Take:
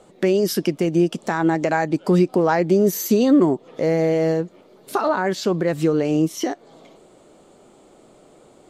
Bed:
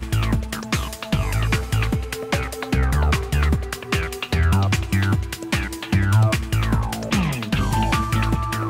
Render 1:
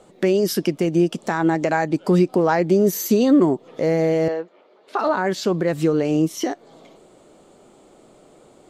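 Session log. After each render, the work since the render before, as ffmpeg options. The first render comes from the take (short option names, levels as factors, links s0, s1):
-filter_complex "[0:a]asettb=1/sr,asplit=3[s0][s1][s2];[s0]atrim=end=4.284[s3];[s1]atrim=start=4.28:end=4.99,asetpts=PTS-STARTPTS,afade=t=in:d=0.004:c=qsin,afade=t=out:st=0.706:d=0.004:c=qsin,highpass=500,lowpass=3200[s4];[s2]atrim=start=4.986[s5];[s3][s4]acrossfade=d=0.004:c1=hsin:c2=qsin[s6];[s6][s5]acrossfade=d=0.004:c1=qsin:c2=hsin"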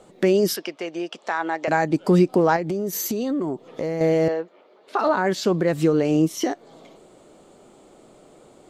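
-filter_complex "[0:a]asettb=1/sr,asplit=3[s0][s1][s2];[s0]atrim=end=0.564[s3];[s1]atrim=start=0.56:end=1.68,asetpts=PTS-STARTPTS,afade=t=in:d=0.004:c=qsin,afade=t=out:st=1.116:d=0.004:c=qsin,highpass=650,lowpass=4600[s4];[s2]atrim=start=1.676[s5];[s3][s4]acrossfade=d=0.004:c1=hsin:c2=qsin[s6];[s6][s5]acrossfade=d=0.004:c1=qsin:c2=hsin,asettb=1/sr,asplit=3[s7][s8][s9];[s7]atrim=end=2.564[s10];[s8]atrim=start=2.56:end=4.01,asetpts=PTS-STARTPTS,afade=t=in:d=0.004:c=qsin,afade=t=out:st=1.446:d=0.004:c=qsin,acompressor=threshold=0.0794:ratio=6:attack=3.2:release=140:knee=1:detection=peak[s11];[s9]atrim=start=4.006[s12];[s10][s11]acrossfade=d=0.004:c1=hsin:c2=qsin[s13];[s13][s12]acrossfade=d=0.004:c1=qsin:c2=hsin"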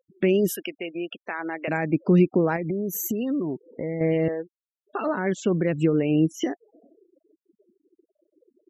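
-af "afftfilt=real='re*gte(hypot(re,im),0.0224)':imag='im*gte(hypot(re,im),0.0224)':win_size=1024:overlap=0.75,firequalizer=gain_entry='entry(210,0);entry(840,-10);entry(2700,3);entry(4500,-22);entry(6600,-1)':delay=0.05:min_phase=1"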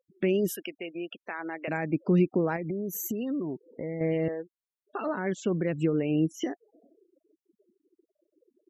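-af "volume=0.562"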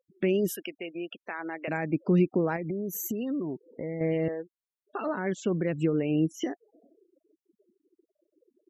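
-af anull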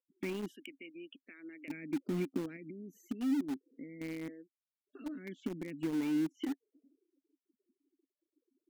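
-filter_complex "[0:a]asplit=3[s0][s1][s2];[s0]bandpass=f=270:t=q:w=8,volume=1[s3];[s1]bandpass=f=2290:t=q:w=8,volume=0.501[s4];[s2]bandpass=f=3010:t=q:w=8,volume=0.355[s5];[s3][s4][s5]amix=inputs=3:normalize=0,asplit=2[s6][s7];[s7]acrusher=bits=5:mix=0:aa=0.000001,volume=0.316[s8];[s6][s8]amix=inputs=2:normalize=0"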